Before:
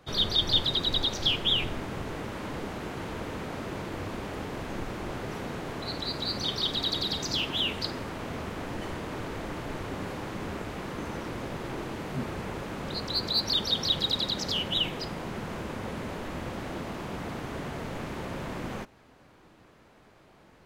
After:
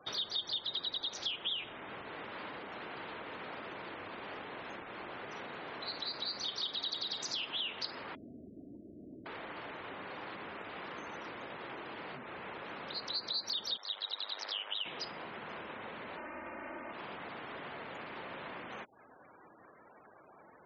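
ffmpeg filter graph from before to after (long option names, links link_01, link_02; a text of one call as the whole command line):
ffmpeg -i in.wav -filter_complex "[0:a]asettb=1/sr,asplit=3[link_01][link_02][link_03];[link_01]atrim=end=8.154[link_04];[link_02]atrim=start=8.15:end=9.26,asetpts=PTS-STARTPTS,afade=type=in:duration=0.004:curve=qsin,afade=type=out:start_time=1.106:duration=0.004:curve=qsin,lowpass=frequency=240:width_type=q:width=1.6,aecho=1:1:3.1:0.35,atrim=end_sample=48951[link_05];[link_03]atrim=start=9.256[link_06];[link_04][link_05]acrossfade=duration=0.004:curve1=hsin:curve2=qsin[link_07];[link_07][link_06]acrossfade=duration=0.004:curve1=qsin:curve2=hsin,asettb=1/sr,asplit=3[link_08][link_09][link_10];[link_08]atrim=end=13.774[link_11];[link_09]atrim=start=13.77:end=14.86,asetpts=PTS-STARTPTS,afade=type=in:duration=0.004:curve=qsin,afade=type=out:start_time=1.086:duration=0.004:curve=qsin,aeval=exprs='val(0)*sin(2*PI*51*n/s)':channel_layout=same,highpass=600,lowpass=3300[link_12];[link_10]atrim=start=14.856[link_13];[link_11][link_12]acrossfade=duration=0.004:curve1=hsin:curve2=qsin[link_14];[link_14][link_13]acrossfade=duration=0.004:curve1=qsin:curve2=hsin,asettb=1/sr,asplit=3[link_15][link_16][link_17];[link_15]atrim=end=16.174[link_18];[link_16]atrim=start=16.17:end=16.92,asetpts=PTS-STARTPTS,afade=type=in:duration=0.004:curve=qsin,afade=type=out:start_time=0.746:duration=0.004:curve=qsin,lowpass=frequency=2600:width=0.5412,lowpass=frequency=2600:width=1.3066,aecho=1:1:3.3:0.82,atrim=end_sample=33075[link_19];[link_17]atrim=start=16.916[link_20];[link_18][link_19]acrossfade=duration=0.004:curve1=hsin:curve2=qsin[link_21];[link_21][link_20]acrossfade=duration=0.004:curve1=qsin:curve2=hsin,acompressor=threshold=-42dB:ratio=5,afftfilt=real='re*gte(hypot(re,im),0.002)':imag='im*gte(hypot(re,im),0.002)':win_size=1024:overlap=0.75,highpass=frequency=990:poles=1,volume=6.5dB" out.wav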